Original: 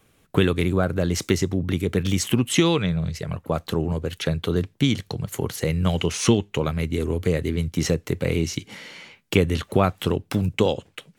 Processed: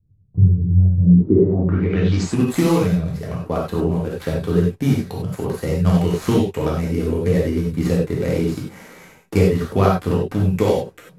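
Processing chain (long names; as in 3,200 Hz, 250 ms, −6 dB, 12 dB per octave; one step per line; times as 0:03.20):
running median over 15 samples
reverb whose tail is shaped and stops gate 120 ms flat, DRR −3.5 dB
low-pass filter sweep 110 Hz → 12,000 Hz, 0:00.98–0:02.44
level −1 dB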